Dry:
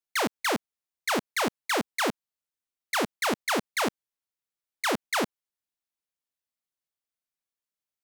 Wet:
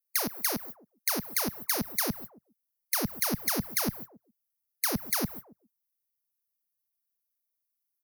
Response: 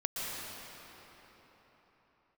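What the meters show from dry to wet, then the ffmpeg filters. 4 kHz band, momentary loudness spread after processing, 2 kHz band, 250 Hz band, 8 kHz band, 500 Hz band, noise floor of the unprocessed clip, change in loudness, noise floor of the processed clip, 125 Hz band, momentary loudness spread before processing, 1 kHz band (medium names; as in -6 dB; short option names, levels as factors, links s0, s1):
-3.5 dB, 14 LU, -8.0 dB, -2.0 dB, +3.5 dB, -8.0 dB, under -85 dBFS, -1.0 dB, -83 dBFS, +5.5 dB, 4 LU, -9.0 dB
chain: -filter_complex "[0:a]aeval=exprs='val(0)+0.5*0.00944*sgn(val(0))':c=same,agate=range=0.0398:threshold=0.00631:ratio=16:detection=peak,equalizer=f=7600:w=2.1:g=-15,asplit=2[s0][s1];[s1]adelay=139,lowpass=f=1800:p=1,volume=0.1,asplit=2[s2][s3];[s3]adelay=139,lowpass=f=1800:p=1,volume=0.36,asplit=2[s4][s5];[s5]adelay=139,lowpass=f=1800:p=1,volume=0.36[s6];[s0][s2][s4][s6]amix=inputs=4:normalize=0,afftdn=nr=27:nf=-51,acrossover=split=160|1400[s7][s8][s9];[s7]dynaudnorm=f=690:g=5:m=4.22[s10];[s9]aexciter=amount=7.1:drive=8.2:freq=4900[s11];[s10][s8][s11]amix=inputs=3:normalize=0,acrossover=split=190[s12][s13];[s13]acompressor=threshold=0.0355:ratio=2.5[s14];[s12][s14]amix=inputs=2:normalize=0"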